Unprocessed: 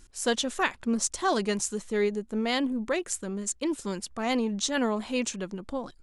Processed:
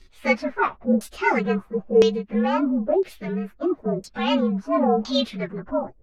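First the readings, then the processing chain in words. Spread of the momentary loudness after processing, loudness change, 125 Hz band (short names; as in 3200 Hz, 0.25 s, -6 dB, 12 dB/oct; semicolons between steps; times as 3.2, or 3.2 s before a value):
8 LU, +6.0 dB, +8.5 dB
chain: inharmonic rescaling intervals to 116%; LFO low-pass saw down 0.99 Hz 500–4900 Hz; gain +7.5 dB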